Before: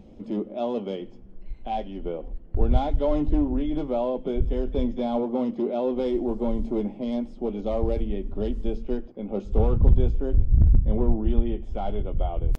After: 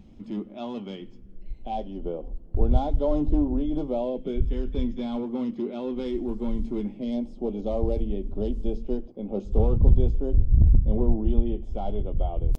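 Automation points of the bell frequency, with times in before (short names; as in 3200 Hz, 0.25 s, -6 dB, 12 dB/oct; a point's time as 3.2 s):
bell -11.5 dB 1.2 oct
0.97 s 520 Hz
1.84 s 2000 Hz
3.79 s 2000 Hz
4.46 s 640 Hz
6.87 s 640 Hz
7.29 s 1700 Hz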